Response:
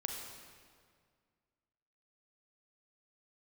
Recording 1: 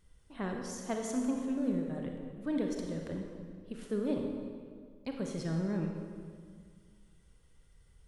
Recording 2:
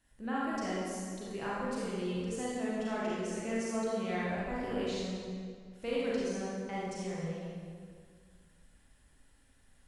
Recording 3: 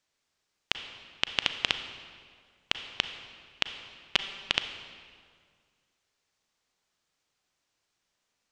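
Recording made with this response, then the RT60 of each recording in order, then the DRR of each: 1; 2.0 s, 2.0 s, 1.9 s; 1.5 dB, -7.5 dB, 8.5 dB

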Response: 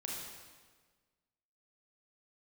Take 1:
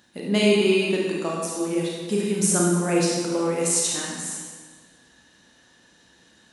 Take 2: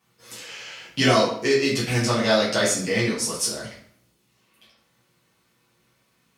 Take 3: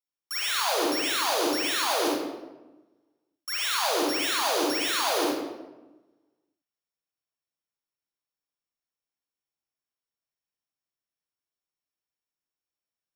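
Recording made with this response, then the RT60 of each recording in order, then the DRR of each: 1; 1.5 s, 0.60 s, 1.1 s; -3.5 dB, -9.5 dB, -5.0 dB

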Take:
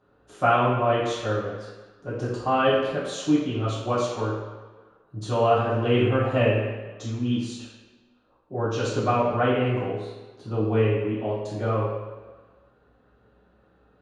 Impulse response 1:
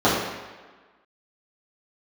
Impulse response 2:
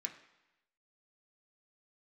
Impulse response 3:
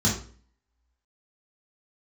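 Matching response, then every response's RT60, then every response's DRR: 1; 1.4 s, 0.95 s, 0.45 s; -11.0 dB, 1.5 dB, -6.0 dB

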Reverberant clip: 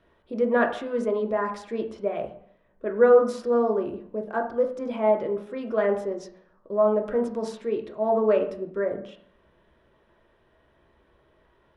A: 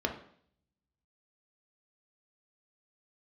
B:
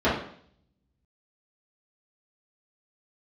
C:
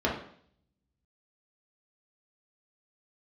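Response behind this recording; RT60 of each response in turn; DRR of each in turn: A; 0.60 s, 0.60 s, 0.60 s; 3.0 dB, -11.5 dB, -4.0 dB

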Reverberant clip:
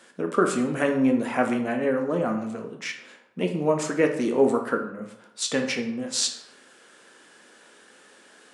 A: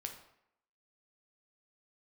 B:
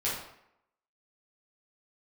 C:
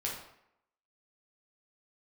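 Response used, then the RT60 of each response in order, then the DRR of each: A; 0.75 s, 0.75 s, 0.75 s; 3.5 dB, -8.5 dB, -4.0 dB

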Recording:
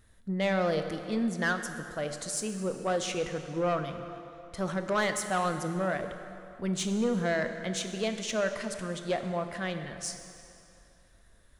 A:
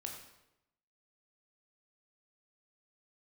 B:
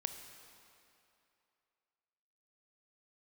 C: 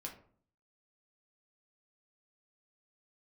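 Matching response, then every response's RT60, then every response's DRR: B; 0.90 s, 2.7 s, 0.50 s; 1.0 dB, 7.0 dB, 0.0 dB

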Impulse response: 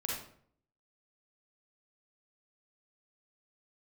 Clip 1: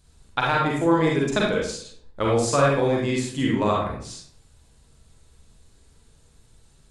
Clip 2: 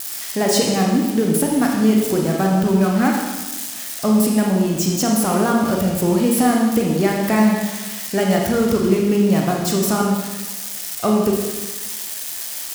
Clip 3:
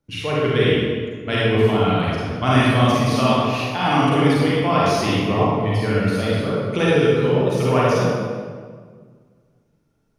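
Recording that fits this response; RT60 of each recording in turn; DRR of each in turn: 1; 0.60 s, 1.2 s, 1.7 s; -3.5 dB, -1.0 dB, -7.5 dB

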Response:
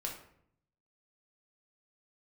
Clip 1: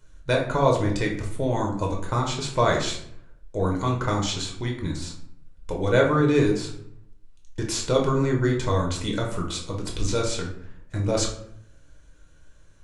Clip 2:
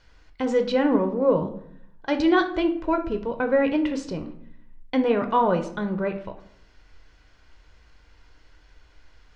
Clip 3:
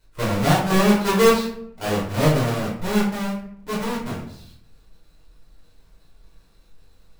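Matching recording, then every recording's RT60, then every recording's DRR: 1; 0.65 s, 0.70 s, 0.65 s; -0.5 dB, 6.0 dB, -8.0 dB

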